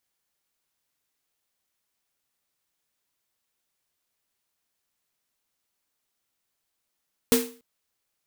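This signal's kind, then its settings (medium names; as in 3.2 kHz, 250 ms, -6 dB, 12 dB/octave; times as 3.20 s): snare drum length 0.29 s, tones 250 Hz, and 460 Hz, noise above 710 Hz, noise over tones -3 dB, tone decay 0.38 s, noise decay 0.36 s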